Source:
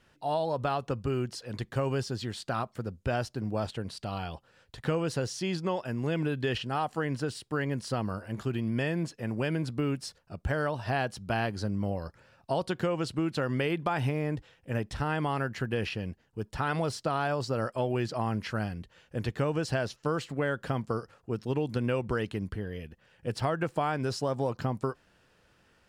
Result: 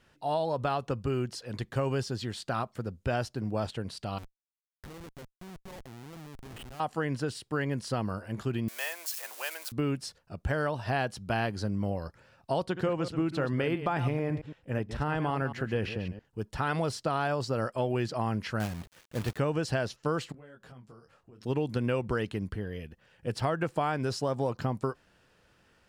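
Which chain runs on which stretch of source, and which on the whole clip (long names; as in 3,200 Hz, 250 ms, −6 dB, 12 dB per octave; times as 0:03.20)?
0:04.18–0:06.80: downward compressor 2 to 1, threshold −52 dBFS + auto-filter low-pass sine 1.7 Hz 760–4,000 Hz + comparator with hysteresis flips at −41.5 dBFS
0:08.68–0:09.72: spike at every zero crossing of −30.5 dBFS + high-pass filter 710 Hz 24 dB per octave + high-shelf EQ 8,000 Hz +4 dB
0:12.64–0:16.25: delay that plays each chunk backwards 111 ms, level −10 dB + high-shelf EQ 3,200 Hz −7 dB
0:18.60–0:19.38: high-shelf EQ 4,200 Hz −7 dB + log-companded quantiser 4 bits
0:20.32–0:21.41: downward compressor 5 to 1, threshold −46 dBFS + micro pitch shift up and down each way 16 cents
whole clip: no processing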